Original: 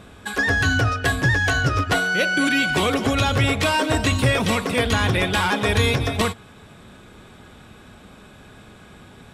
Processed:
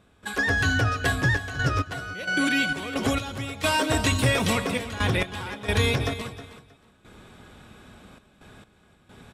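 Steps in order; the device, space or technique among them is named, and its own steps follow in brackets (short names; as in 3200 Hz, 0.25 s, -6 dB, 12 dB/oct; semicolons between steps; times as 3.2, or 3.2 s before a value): 3.03–4.53 high shelf 5300 Hz +5.5 dB; trance gate with a delay (step gate ".xxxxx.x..xx.x." 66 bpm -12 dB; feedback echo 0.315 s, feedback 21%, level -14.5 dB); gain -3.5 dB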